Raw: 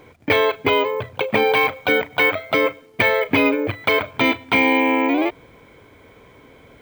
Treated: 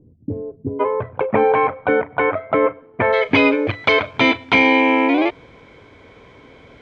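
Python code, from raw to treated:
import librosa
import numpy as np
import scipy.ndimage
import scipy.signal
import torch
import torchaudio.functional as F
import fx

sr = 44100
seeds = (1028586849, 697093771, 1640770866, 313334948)

y = fx.ladder_lowpass(x, sr, hz=fx.steps((0.0, 320.0), (0.79, 1800.0), (3.12, 7000.0)), resonance_pct=20)
y = y * 10.0 ** (7.5 / 20.0)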